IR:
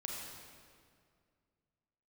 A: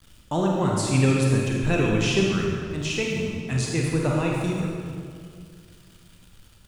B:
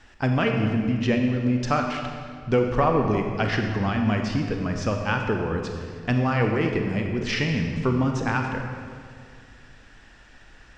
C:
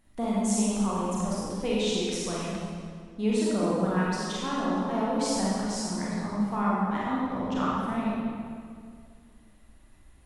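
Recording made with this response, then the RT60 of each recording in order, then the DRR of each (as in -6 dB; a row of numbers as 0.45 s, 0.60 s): A; 2.1 s, 2.1 s, 2.1 s; -2.0 dB, 3.0 dB, -7.0 dB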